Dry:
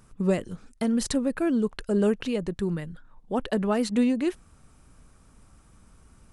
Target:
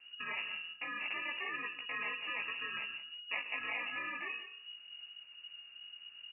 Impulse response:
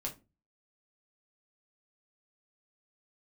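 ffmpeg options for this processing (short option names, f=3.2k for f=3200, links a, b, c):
-filter_complex "[0:a]alimiter=limit=-21.5dB:level=0:latency=1:release=71,lowshelf=f=160:g=9.5,bandreject=f=59.48:t=h:w=4,bandreject=f=118.96:t=h:w=4,bandreject=f=178.44:t=h:w=4,bandreject=f=237.92:t=h:w=4,bandreject=f=297.4:t=h:w=4,bandreject=f=356.88:t=h:w=4,bandreject=f=416.36:t=h:w=4,bandreject=f=475.84:t=h:w=4,bandreject=f=535.32:t=h:w=4,bandreject=f=594.8:t=h:w=4,bandreject=f=654.28:t=h:w=4,bandreject=f=713.76:t=h:w=4,acrusher=samples=31:mix=1:aa=0.000001,flanger=delay=15.5:depth=3.2:speed=2.8,afftfilt=real='re*lt(hypot(re,im),0.178)':imag='im*lt(hypot(re,im),0.178)':win_size=1024:overlap=0.75,asplit=2[a][b];[b]aecho=0:1:176:0.237[c];[a][c]amix=inputs=2:normalize=0,lowpass=f=2.5k:t=q:w=0.5098,lowpass=f=2.5k:t=q:w=0.6013,lowpass=f=2.5k:t=q:w=0.9,lowpass=f=2.5k:t=q:w=2.563,afreqshift=-2900,volume=-3dB"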